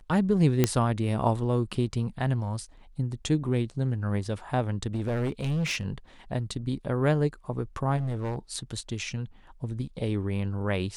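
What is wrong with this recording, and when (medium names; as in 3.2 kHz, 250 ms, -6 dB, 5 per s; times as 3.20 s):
0.64 s: pop -7 dBFS
4.94–5.85 s: clipped -24.5 dBFS
7.96–8.36 s: clipped -26.5 dBFS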